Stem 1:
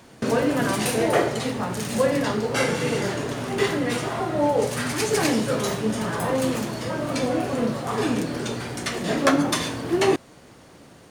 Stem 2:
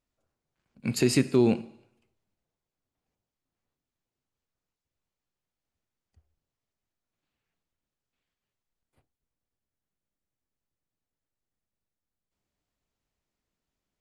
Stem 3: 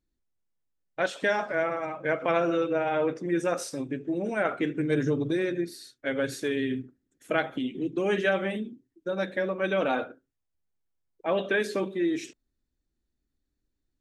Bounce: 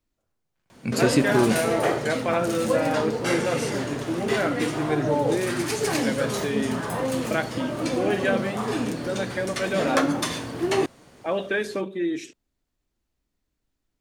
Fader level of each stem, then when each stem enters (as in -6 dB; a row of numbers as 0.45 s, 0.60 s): -3.0 dB, +1.0 dB, +0.5 dB; 0.70 s, 0.00 s, 0.00 s